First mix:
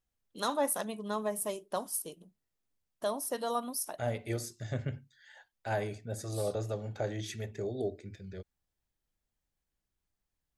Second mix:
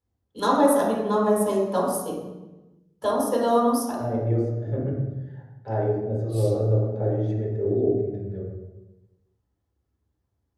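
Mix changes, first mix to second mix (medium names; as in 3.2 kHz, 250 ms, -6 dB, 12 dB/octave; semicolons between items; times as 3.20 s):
second voice: add band-pass filter 350 Hz, Q 0.82; reverb: on, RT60 1.1 s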